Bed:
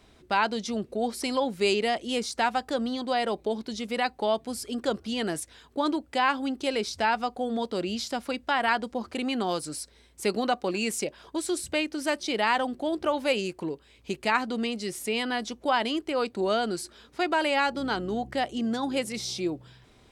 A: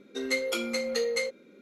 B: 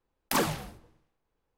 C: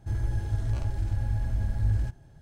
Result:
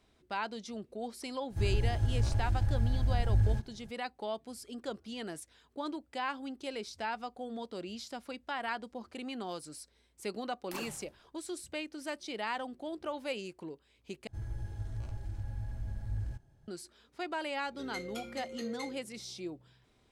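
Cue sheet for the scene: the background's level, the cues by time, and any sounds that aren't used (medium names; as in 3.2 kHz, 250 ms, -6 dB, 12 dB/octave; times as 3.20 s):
bed -11.5 dB
1.50 s: add C -1.5 dB
10.40 s: add B -16 dB
14.27 s: replace with C -11 dB
17.63 s: add A -14 dB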